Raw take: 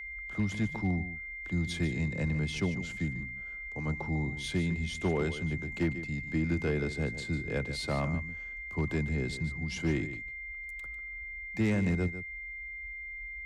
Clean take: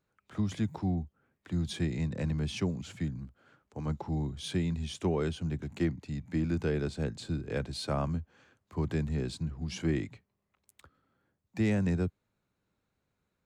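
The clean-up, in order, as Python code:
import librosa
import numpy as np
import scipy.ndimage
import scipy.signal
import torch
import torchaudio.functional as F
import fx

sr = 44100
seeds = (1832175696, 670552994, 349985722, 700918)

y = fx.fix_declip(x, sr, threshold_db=-22.0)
y = fx.notch(y, sr, hz=2100.0, q=30.0)
y = fx.noise_reduce(y, sr, print_start_s=12.24, print_end_s=12.74, reduce_db=30.0)
y = fx.fix_echo_inverse(y, sr, delay_ms=148, level_db=-12.5)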